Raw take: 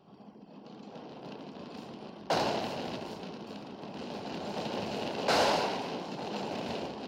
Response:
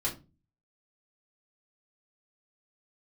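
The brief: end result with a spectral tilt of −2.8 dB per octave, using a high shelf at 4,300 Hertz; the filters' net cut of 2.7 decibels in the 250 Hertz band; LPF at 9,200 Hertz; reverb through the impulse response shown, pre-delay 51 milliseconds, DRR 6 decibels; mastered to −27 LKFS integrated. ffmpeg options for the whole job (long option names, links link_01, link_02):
-filter_complex "[0:a]lowpass=9200,equalizer=frequency=250:width_type=o:gain=-3.5,highshelf=frequency=4300:gain=-5,asplit=2[link_01][link_02];[1:a]atrim=start_sample=2205,adelay=51[link_03];[link_02][link_03]afir=irnorm=-1:irlink=0,volume=-11dB[link_04];[link_01][link_04]amix=inputs=2:normalize=0,volume=7dB"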